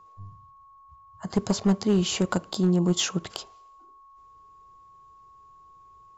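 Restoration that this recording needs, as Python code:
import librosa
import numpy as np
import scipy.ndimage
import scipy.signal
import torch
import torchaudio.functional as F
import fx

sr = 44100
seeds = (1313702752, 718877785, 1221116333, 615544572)

y = fx.fix_declip(x, sr, threshold_db=-15.0)
y = fx.notch(y, sr, hz=1100.0, q=30.0)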